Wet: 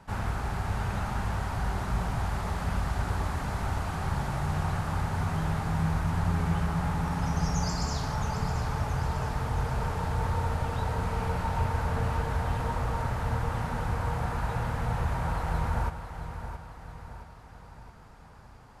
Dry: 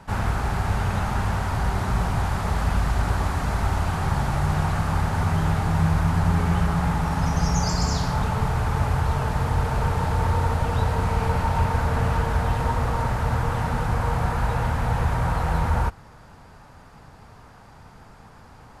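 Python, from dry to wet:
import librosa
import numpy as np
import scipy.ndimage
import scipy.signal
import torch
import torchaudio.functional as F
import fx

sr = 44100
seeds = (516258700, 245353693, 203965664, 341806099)

y = fx.echo_feedback(x, sr, ms=670, feedback_pct=51, wet_db=-10.0)
y = F.gain(torch.from_numpy(y), -7.0).numpy()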